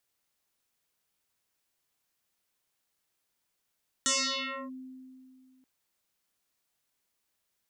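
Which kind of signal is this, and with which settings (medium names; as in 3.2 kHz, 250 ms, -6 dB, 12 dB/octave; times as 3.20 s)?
FM tone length 1.58 s, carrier 259 Hz, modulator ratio 3.11, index 10, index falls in 0.64 s linear, decay 2.47 s, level -23 dB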